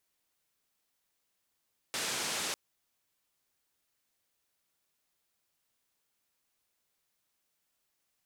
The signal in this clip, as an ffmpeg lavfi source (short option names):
-f lavfi -i "anoisesrc=c=white:d=0.6:r=44100:seed=1,highpass=f=140,lowpass=f=7600,volume=-25.7dB"